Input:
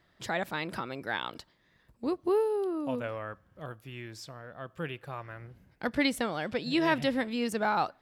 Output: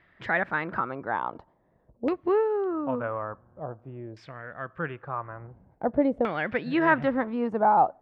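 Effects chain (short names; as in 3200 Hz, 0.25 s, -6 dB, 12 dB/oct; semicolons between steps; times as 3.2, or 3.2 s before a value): LFO low-pass saw down 0.48 Hz 560–2300 Hz; 2.69–3.97 buzz 120 Hz, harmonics 13, -65 dBFS -6 dB/oct; gain +2.5 dB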